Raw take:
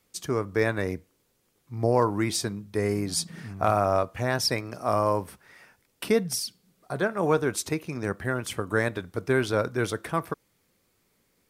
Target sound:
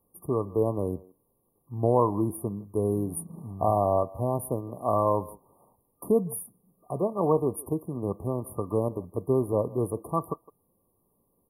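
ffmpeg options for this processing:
-filter_complex "[0:a]asplit=2[a][b];[b]adelay=160,highpass=300,lowpass=3.4k,asoftclip=type=hard:threshold=-18dB,volume=-20dB[c];[a][c]amix=inputs=2:normalize=0,afftfilt=real='re*(1-between(b*sr/4096,1200,9400))':imag='im*(1-between(b*sr/4096,1200,9400))':win_size=4096:overlap=0.75"

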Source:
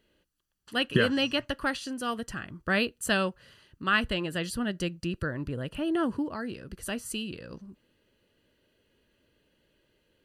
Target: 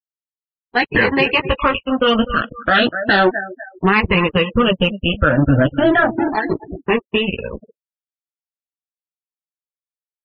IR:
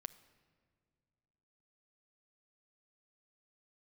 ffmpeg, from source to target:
-filter_complex "[0:a]afftfilt=real='re*pow(10,19/40*sin(2*PI*(0.82*log(max(b,1)*sr/1024/100)/log(2)-(0.35)*(pts-256)/sr)))':imag='im*pow(10,19/40*sin(2*PI*(0.82*log(max(b,1)*sr/1024/100)/log(2)-(0.35)*(pts-256)/sr)))':win_size=1024:overlap=0.75,aemphasis=mode=reproduction:type=cd,flanger=delay=9.6:depth=9:regen=-5:speed=0.23:shape=sinusoidal,equalizer=f=200:w=1.1:g=-3,acrossover=split=3700[a][b];[b]acompressor=threshold=-58dB:ratio=6[c];[a][c]amix=inputs=2:normalize=0,aeval=exprs='sgn(val(0))*max(abs(val(0))-0.00794,0)':c=same,asplit=2[d][e];[e]adelay=247,lowpass=f=3.4k:p=1,volume=-19dB,asplit=2[f][g];[g]adelay=247,lowpass=f=3.4k:p=1,volume=0.37,asplit=2[h][i];[i]adelay=247,lowpass=f=3.4k:p=1,volume=0.37[j];[f][h][j]amix=inputs=3:normalize=0[k];[d][k]amix=inputs=2:normalize=0,afftfilt=real='re*lt(hypot(re,im),0.282)':imag='im*lt(hypot(re,im),0.282)':win_size=1024:overlap=0.75,lowpass=5.2k,afftfilt=real='re*gte(hypot(re,im),0.00631)':imag='im*gte(hypot(re,im),0.00631)':win_size=1024:overlap=0.75,alimiter=level_in=25.5dB:limit=-1dB:release=50:level=0:latency=1,volume=-3dB" -ar 16000 -c:a libvorbis -b:a 32k

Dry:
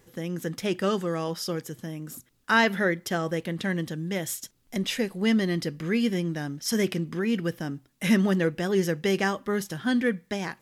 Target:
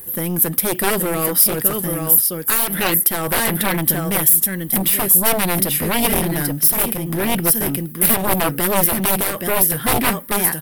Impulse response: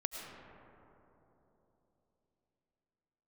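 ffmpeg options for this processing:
-af "aecho=1:1:825:0.422,aeval=exprs='0.299*(cos(1*acos(clip(val(0)/0.299,-1,1)))-cos(1*PI/2))+0.075*(cos(3*acos(clip(val(0)/0.299,-1,1)))-cos(3*PI/2))+0.075*(cos(4*acos(clip(val(0)/0.299,-1,1)))-cos(4*PI/2))+0.133*(cos(7*acos(clip(val(0)/0.299,-1,1)))-cos(7*PI/2))':c=same,aexciter=amount=8.4:drive=9.9:freq=9.5k,alimiter=limit=-3dB:level=0:latency=1:release=219,volume=2dB"

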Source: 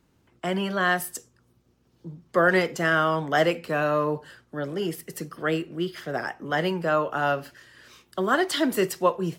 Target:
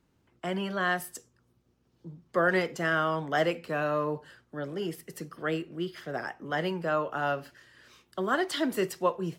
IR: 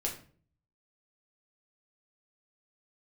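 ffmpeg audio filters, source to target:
-af "highshelf=f=7.5k:g=-4,volume=-5dB"

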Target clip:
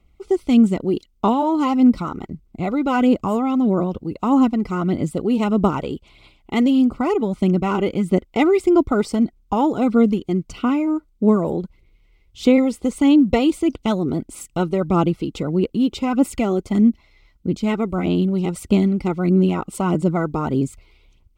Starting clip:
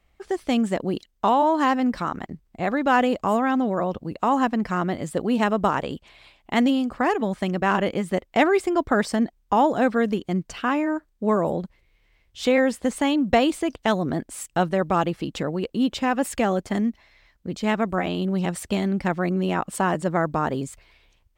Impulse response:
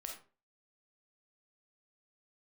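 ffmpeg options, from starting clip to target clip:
-af "asuperstop=centerf=1700:order=20:qfactor=4.2,lowshelf=f=450:t=q:w=1.5:g=6,aphaser=in_gain=1:out_gain=1:delay=2.5:decay=0.36:speed=1.6:type=sinusoidal,volume=-1.5dB"

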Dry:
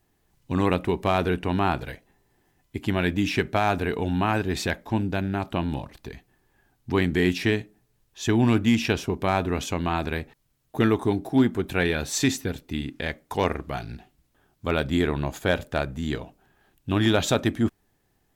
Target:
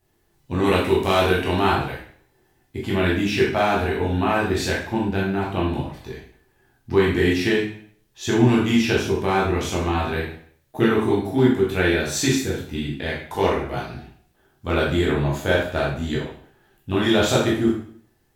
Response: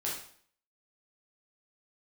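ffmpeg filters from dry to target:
-filter_complex "[0:a]asettb=1/sr,asplit=3[a][b][c];[a]atrim=end=0.644[d];[b]atrim=start=0.64:end=1.72,asetpts=PTS-STARTPTS,afade=t=in:d=0.004:c=qsin,afade=t=out:st=1.076:d=0.004:c=qsin,highshelf=f=2.7k:g=9.5[e];[c]atrim=start=1.716[f];[d][e]acrossfade=d=0.004:c1=hsin:c2=qsin[g];[g][f]acrossfade=d=0.004:c1=qsin:c2=hsin[h];[1:a]atrim=start_sample=2205[i];[h][i]afir=irnorm=-1:irlink=0"

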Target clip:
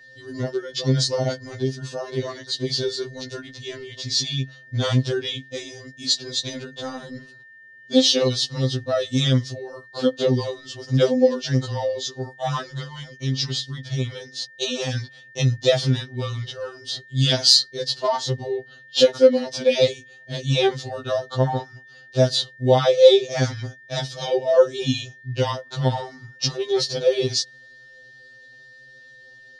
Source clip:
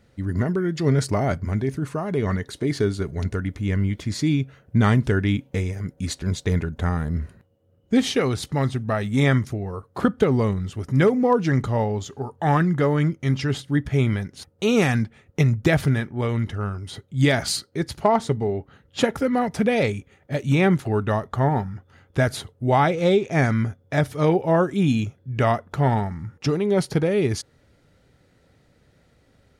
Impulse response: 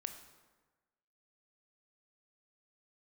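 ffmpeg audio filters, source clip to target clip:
-filter_complex "[0:a]lowpass=f=5k:w=0.5412,lowpass=f=5k:w=1.3066,equalizer=f=520:t=o:w=0.46:g=13,asettb=1/sr,asplit=3[a][b][c];[a]atrim=end=12.714[d];[b]atrim=start=12.71:end=14.94,asetpts=PTS-STARTPTS,afade=t=in:d=0.004:c=qsin,afade=t=out:st=2.226:d=0.004:c=qsin,acompressor=threshold=-20dB:ratio=2.5[e];[c]atrim=start=14.936[f];[d][e]acrossfade=d=0.004:c1=hsin:c2=qsin[g];[g][f]acrossfade=d=0.004:c1=qsin:c2=hsin,aexciter=amount=12.7:drive=5.3:freq=3.2k,aeval=exprs='val(0)+0.00631*sin(2*PI*1800*n/s)':c=same,afftfilt=real='re*2.45*eq(mod(b,6),0)':imag='im*2.45*eq(mod(b,6),0)':win_size=2048:overlap=0.75,volume=-4dB"

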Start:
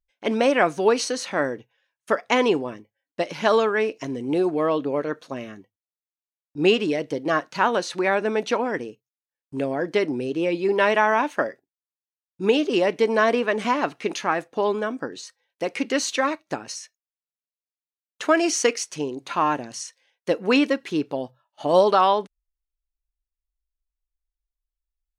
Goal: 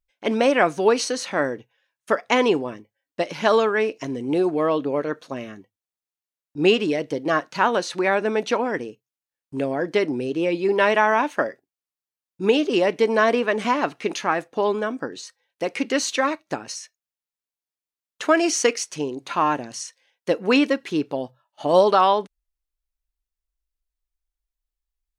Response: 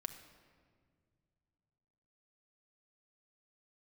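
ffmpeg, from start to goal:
-af "volume=1dB"

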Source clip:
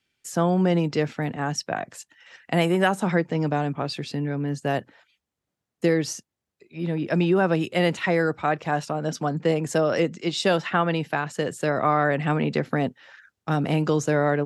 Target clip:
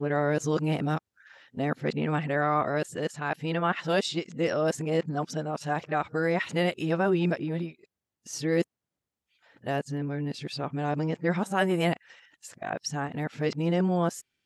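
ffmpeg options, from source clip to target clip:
-af "areverse,volume=-4.5dB"

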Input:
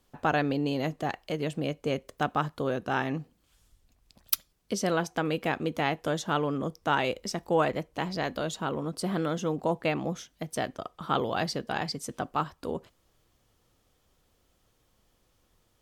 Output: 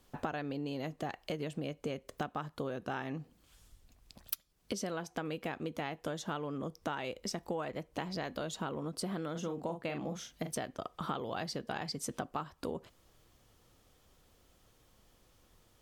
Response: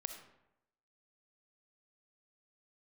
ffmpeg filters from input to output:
-filter_complex "[0:a]asettb=1/sr,asplit=3[a][b][c];[a]atrim=end=9.314[d];[b]atrim=start=9.31:end=10.52,asetpts=PTS-STARTPTS,afade=t=in:d=0.004:c=qsin,afade=t=out:st=1.206:d=0.004:c=qsin,asplit=2[e][f];[f]adelay=41,volume=-7dB[g];[e][g]amix=inputs=2:normalize=0,atrim=end_sample=53361[h];[c]atrim=start=10.516[i];[d][h]acrossfade=d=0.004:c1=hsin:c2=qsin[j];[j][i]acrossfade=d=0.004:c1=qsin:c2=hsin,acompressor=threshold=-37dB:ratio=12,volume=3dB"

